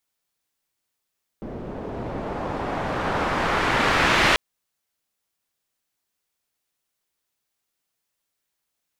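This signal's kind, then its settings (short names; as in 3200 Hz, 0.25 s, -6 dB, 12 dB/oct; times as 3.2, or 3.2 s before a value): swept filtered noise white, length 2.94 s lowpass, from 380 Hz, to 2500 Hz, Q 0.93, exponential, gain ramp +9 dB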